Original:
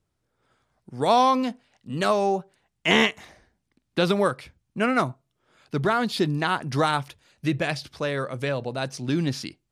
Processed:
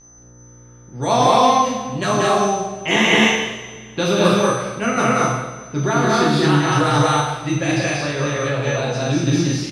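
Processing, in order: whistle 6.1 kHz -37 dBFS; level-controlled noise filter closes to 2.9 kHz, open at -18.5 dBFS; mains buzz 60 Hz, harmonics 33, -52 dBFS -6 dB/octave; loudspeakers at several distances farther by 63 m -2 dB, 77 m -1 dB; two-slope reverb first 0.94 s, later 2.7 s, from -19 dB, DRR -4.5 dB; trim -2 dB

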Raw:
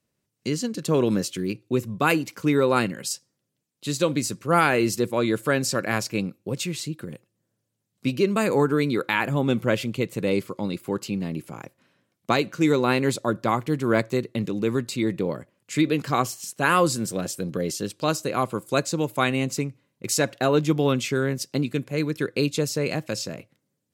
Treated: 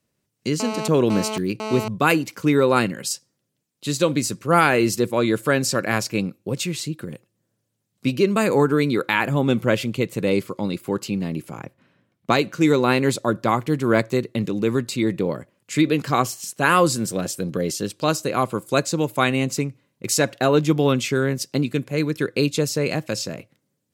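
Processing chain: 0.60–1.88 s: mobile phone buzz -31 dBFS; 11.59–12.30 s: tone controls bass +5 dB, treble -9 dB; trim +3 dB

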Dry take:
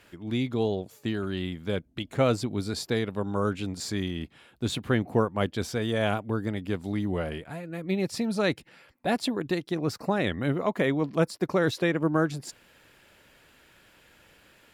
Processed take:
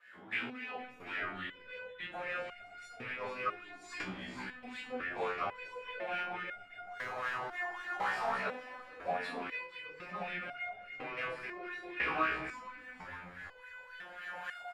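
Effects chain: rattle on loud lows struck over -31 dBFS, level -16 dBFS; recorder AGC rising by 9.4 dB/s; treble shelf 7.3 kHz +8.5 dB; compression, threshold -26 dBFS, peak gain reduction 9 dB; saturation -17.5 dBFS, distortion -22 dB; rotary cabinet horn 5.5 Hz, later 1.2 Hz, at 3.06 s; 6.86–8.30 s: integer overflow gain 31.5 dB; simulated room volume 160 m³, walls mixed, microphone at 5.6 m; wah-wah 3.6 Hz 770–1900 Hz, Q 5.6; frequency-shifting echo 460 ms, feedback 56%, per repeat -110 Hz, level -11 dB; resonator arpeggio 2 Hz 63–710 Hz; trim +7 dB

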